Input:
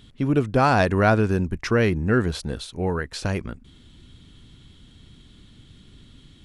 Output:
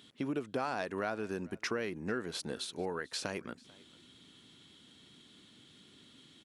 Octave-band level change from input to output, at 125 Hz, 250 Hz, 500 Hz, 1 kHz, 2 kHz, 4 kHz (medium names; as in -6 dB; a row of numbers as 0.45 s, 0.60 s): -24.0 dB, -15.5 dB, -14.0 dB, -16.0 dB, -13.5 dB, -6.5 dB